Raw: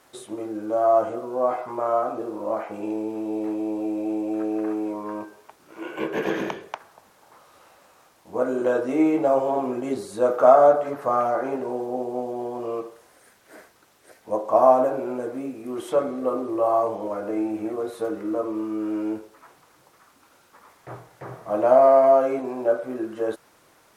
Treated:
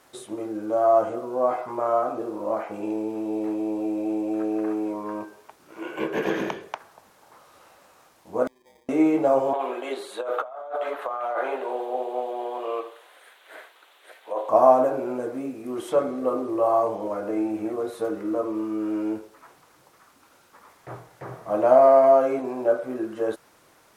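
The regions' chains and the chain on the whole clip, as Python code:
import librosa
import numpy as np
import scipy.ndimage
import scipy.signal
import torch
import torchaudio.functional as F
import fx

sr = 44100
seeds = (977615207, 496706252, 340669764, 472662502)

y = fx.chain(x, sr, fx.hum_notches(base_hz=60, count=6),
    fx.sample_hold(seeds[0], rate_hz=1400.0, jitter_pct=0),
    fx.gate_flip(shuts_db=-25.0, range_db=-36), at=(8.47, 8.89))
y = fx.chain(y, sr, fx.bessel_highpass(hz=610.0, order=4),
    fx.over_compress(threshold_db=-29.0, ratio=-1.0),
    fx.high_shelf_res(hz=4300.0, db=-6.5, q=3.0), at=(9.53, 14.49))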